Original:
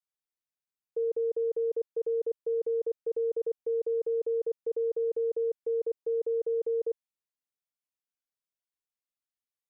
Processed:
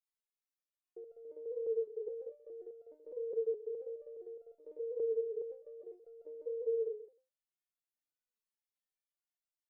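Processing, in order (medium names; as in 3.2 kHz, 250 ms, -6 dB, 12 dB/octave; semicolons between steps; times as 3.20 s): on a send: feedback delay 131 ms, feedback 18%, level -12.5 dB; on the sum: resonator arpeggio 4.8 Hz 220–690 Hz; trim +8.5 dB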